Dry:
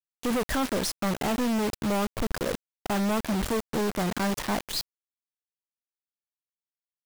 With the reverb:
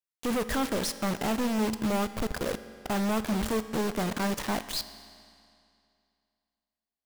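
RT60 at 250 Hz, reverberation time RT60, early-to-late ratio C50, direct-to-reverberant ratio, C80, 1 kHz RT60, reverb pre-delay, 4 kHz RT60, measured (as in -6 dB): 2.5 s, 2.5 s, 12.5 dB, 11.5 dB, 13.5 dB, 2.5 s, 5 ms, 2.2 s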